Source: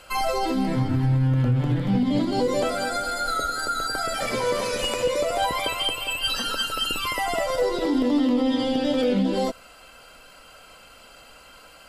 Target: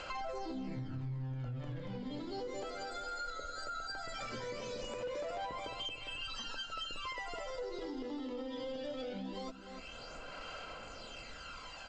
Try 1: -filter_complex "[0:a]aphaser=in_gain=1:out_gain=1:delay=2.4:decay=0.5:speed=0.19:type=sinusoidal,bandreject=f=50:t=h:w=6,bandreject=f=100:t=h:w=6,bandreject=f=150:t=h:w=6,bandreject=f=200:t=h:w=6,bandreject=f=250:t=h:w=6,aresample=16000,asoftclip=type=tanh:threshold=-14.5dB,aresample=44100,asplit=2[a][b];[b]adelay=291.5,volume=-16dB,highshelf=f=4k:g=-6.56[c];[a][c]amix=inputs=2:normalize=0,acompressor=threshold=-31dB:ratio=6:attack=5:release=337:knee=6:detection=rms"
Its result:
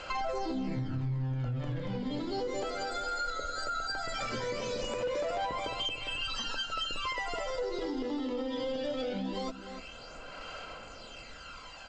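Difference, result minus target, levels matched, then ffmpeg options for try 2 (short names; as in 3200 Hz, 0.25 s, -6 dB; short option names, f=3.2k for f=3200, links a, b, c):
compressor: peak gain reduction -7 dB
-filter_complex "[0:a]aphaser=in_gain=1:out_gain=1:delay=2.4:decay=0.5:speed=0.19:type=sinusoidal,bandreject=f=50:t=h:w=6,bandreject=f=100:t=h:w=6,bandreject=f=150:t=h:w=6,bandreject=f=200:t=h:w=6,bandreject=f=250:t=h:w=6,aresample=16000,asoftclip=type=tanh:threshold=-14.5dB,aresample=44100,asplit=2[a][b];[b]adelay=291.5,volume=-16dB,highshelf=f=4k:g=-6.56[c];[a][c]amix=inputs=2:normalize=0,acompressor=threshold=-39.5dB:ratio=6:attack=5:release=337:knee=6:detection=rms"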